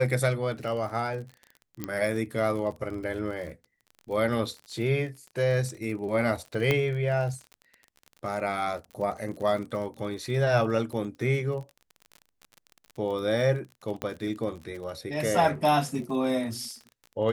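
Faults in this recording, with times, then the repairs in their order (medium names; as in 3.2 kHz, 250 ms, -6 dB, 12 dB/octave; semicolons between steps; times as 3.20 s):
crackle 39 per s -36 dBFS
1.84 s: pop -16 dBFS
6.71 s: pop -11 dBFS
14.02 s: pop -16 dBFS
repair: de-click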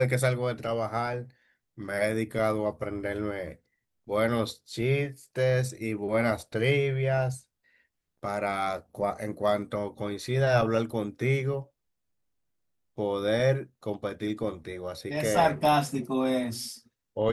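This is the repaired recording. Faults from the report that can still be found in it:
nothing left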